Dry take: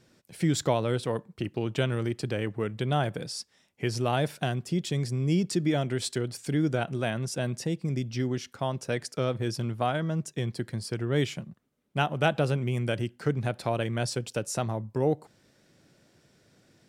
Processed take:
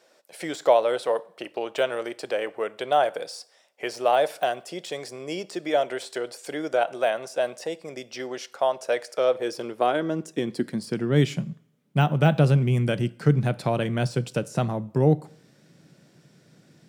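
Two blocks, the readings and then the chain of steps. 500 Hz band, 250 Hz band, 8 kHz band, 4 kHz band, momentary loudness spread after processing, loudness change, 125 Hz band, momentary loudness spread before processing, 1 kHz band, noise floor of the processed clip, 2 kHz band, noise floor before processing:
+6.0 dB, +1.5 dB, -3.5 dB, +1.0 dB, 14 LU, +4.0 dB, +3.0 dB, 6 LU, +6.5 dB, -60 dBFS, +3.0 dB, -66 dBFS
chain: de-esser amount 90%; high-pass sweep 590 Hz -> 150 Hz, 9.18–11.38; two-slope reverb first 0.57 s, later 1.9 s, from -28 dB, DRR 17.5 dB; gain +3 dB

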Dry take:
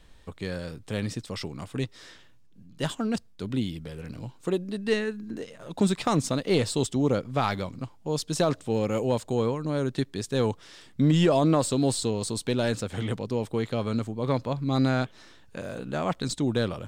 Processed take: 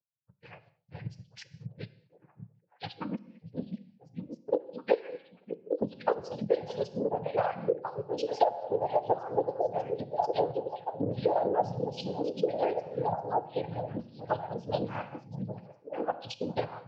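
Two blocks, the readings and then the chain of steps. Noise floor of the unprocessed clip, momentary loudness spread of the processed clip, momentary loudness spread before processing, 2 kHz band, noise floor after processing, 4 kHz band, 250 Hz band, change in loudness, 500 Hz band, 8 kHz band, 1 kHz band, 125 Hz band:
-53 dBFS, 15 LU, 13 LU, -10.0 dB, -68 dBFS, -12.0 dB, -11.5 dB, -5.0 dB, -2.0 dB, under -20 dB, +1.0 dB, -12.5 dB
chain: per-bin expansion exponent 3; dynamic EQ 430 Hz, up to +5 dB, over -43 dBFS, Q 1.8; noise vocoder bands 8; delay with a stepping band-pass 0.589 s, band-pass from 150 Hz, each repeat 1.4 oct, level -3.5 dB; non-linear reverb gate 0.25 s falling, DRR 9.5 dB; compressor 5:1, threshold -36 dBFS, peak gain reduction 18 dB; steep low-pass 5100 Hz 36 dB/oct; band shelf 620 Hz +11 dB 1.2 oct; transient shaper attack +2 dB, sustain -3 dB; gain +2.5 dB

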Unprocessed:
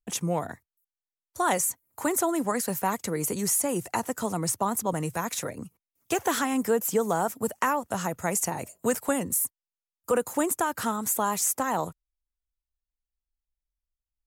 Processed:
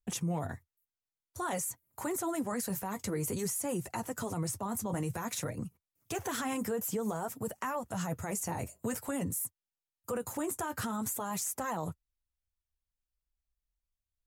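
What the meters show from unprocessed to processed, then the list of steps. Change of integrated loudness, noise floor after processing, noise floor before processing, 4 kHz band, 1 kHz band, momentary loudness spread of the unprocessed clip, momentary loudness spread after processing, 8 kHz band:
-8.0 dB, under -85 dBFS, under -85 dBFS, -7.5 dB, -10.0 dB, 7 LU, 6 LU, -9.0 dB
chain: bell 85 Hz +12.5 dB 1.6 oct; flange 0.52 Hz, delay 4.8 ms, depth 5.7 ms, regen -38%; limiter -26 dBFS, peak gain reduction 11 dB

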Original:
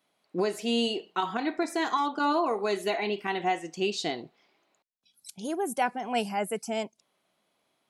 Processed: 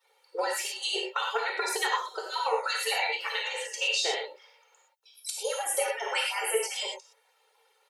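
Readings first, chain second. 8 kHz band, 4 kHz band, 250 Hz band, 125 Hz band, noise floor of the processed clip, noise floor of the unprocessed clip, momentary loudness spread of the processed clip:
+9.5 dB, +5.0 dB, under -20 dB, under -35 dB, -69 dBFS, -76 dBFS, 7 LU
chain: median-filter separation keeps percussive; elliptic high-pass 440 Hz, stop band 40 dB; comb 2.2 ms, depth 69%; compressor 5:1, threshold -36 dBFS, peak gain reduction 12.5 dB; non-linear reverb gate 0.14 s flat, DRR -1.5 dB; gain +8 dB

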